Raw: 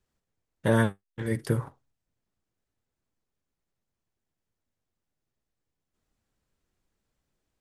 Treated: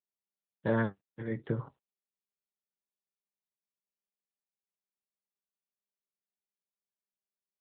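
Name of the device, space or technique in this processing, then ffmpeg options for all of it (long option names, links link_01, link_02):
mobile call with aggressive noise cancelling: -af "highpass=frequency=100:poles=1,afftdn=noise_reduction=21:noise_floor=-48,volume=-5dB" -ar 8000 -c:a libopencore_amrnb -b:a 12200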